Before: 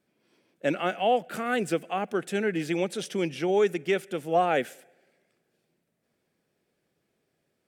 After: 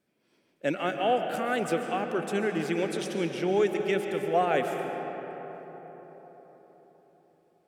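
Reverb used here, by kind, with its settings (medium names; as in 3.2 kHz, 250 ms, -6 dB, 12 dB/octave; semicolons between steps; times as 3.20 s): algorithmic reverb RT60 4.7 s, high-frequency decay 0.4×, pre-delay 95 ms, DRR 4.5 dB; trim -2 dB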